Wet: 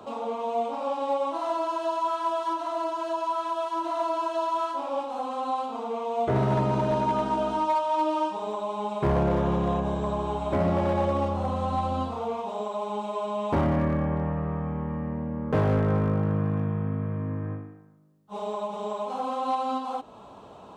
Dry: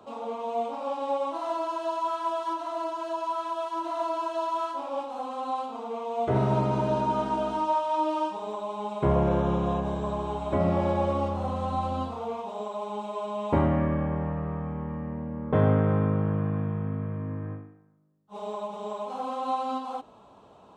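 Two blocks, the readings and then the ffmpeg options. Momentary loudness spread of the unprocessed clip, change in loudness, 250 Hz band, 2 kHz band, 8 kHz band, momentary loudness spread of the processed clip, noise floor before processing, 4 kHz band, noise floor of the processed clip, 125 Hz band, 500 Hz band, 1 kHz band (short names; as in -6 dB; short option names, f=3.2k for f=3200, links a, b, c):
10 LU, +1.0 dB, +1.0 dB, +2.0 dB, n/a, 7 LU, -54 dBFS, +2.0 dB, -47 dBFS, +0.5 dB, +1.5 dB, +1.5 dB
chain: -filter_complex "[0:a]asplit=2[a][b];[b]acompressor=threshold=-42dB:ratio=5,volume=1.5dB[c];[a][c]amix=inputs=2:normalize=0,asoftclip=type=hard:threshold=-18.5dB"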